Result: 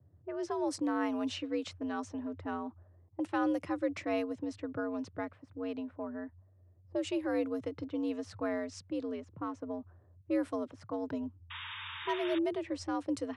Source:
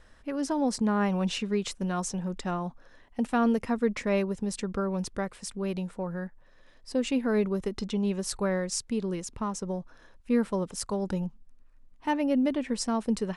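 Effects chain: low-pass opened by the level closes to 330 Hz, open at -23 dBFS; painted sound noise, 11.5–12.39, 780–3700 Hz -37 dBFS; frequency shift +77 Hz; gain -6.5 dB

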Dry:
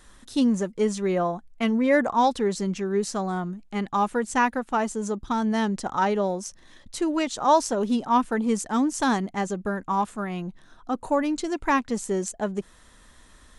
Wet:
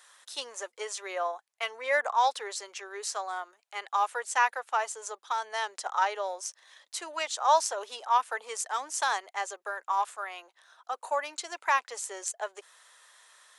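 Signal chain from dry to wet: Bessel high-pass 880 Hz, order 8

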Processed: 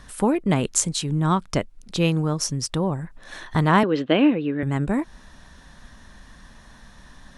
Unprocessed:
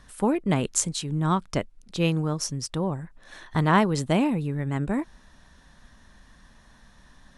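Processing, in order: in parallel at -0.5 dB: compressor, threshold -32 dBFS, peak gain reduction 16.5 dB; 3.83–4.63 on the sum: speaker cabinet 260–3700 Hz, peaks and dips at 300 Hz +8 dB, 500 Hz +6 dB, 880 Hz -7 dB, 1600 Hz +6 dB, 2900 Hz +8 dB; gain +1 dB

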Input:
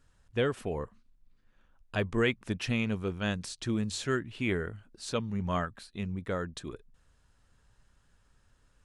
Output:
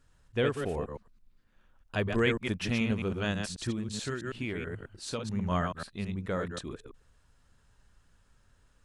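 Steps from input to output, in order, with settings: reverse delay 0.108 s, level -5 dB; 3.7–5.25 compressor, threshold -31 dBFS, peak gain reduction 7.5 dB

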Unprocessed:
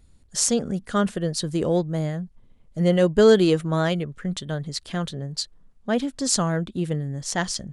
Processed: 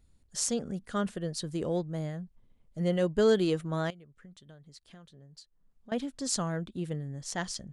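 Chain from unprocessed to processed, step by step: 3.9–5.92 compressor 4:1, threshold -44 dBFS, peak gain reduction 19 dB; gain -9 dB

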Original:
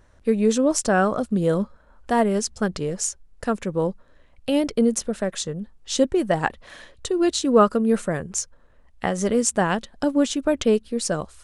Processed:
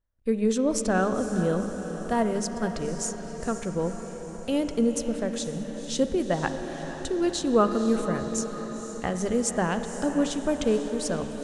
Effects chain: notches 50/100/150/200 Hz; gate -50 dBFS, range -26 dB; low shelf 110 Hz +10.5 dB; diffused feedback echo 0.496 s, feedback 61%, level -11 dB; on a send at -9 dB: reverb RT60 4.3 s, pre-delay 40 ms; on the sum: gain -6 dB

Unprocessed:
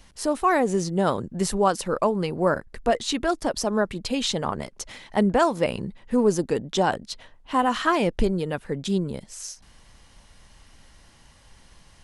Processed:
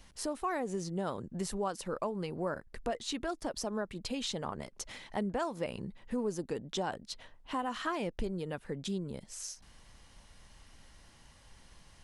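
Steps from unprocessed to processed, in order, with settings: compressor 2:1, threshold -33 dBFS, peak gain reduction 10.5 dB; gain -5 dB

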